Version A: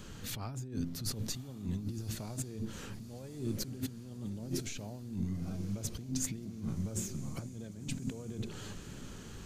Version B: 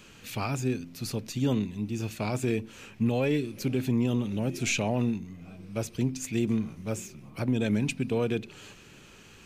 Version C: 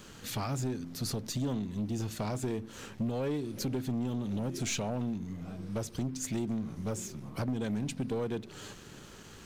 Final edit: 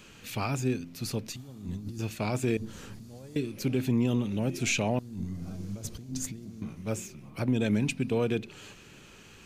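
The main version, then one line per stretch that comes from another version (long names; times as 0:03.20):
B
0:01.36–0:01.99: punch in from A
0:02.57–0:03.36: punch in from A
0:04.99–0:06.62: punch in from A
not used: C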